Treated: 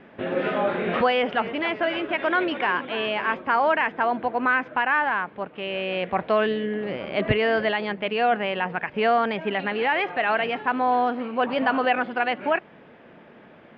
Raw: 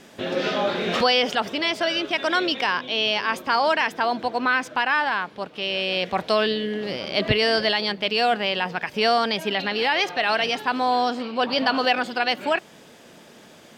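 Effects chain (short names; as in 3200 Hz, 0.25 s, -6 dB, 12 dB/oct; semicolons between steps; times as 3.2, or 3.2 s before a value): LPF 2400 Hz 24 dB/oct; 1.09–3.34 warbling echo 0.281 s, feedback 57%, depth 157 cents, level -13.5 dB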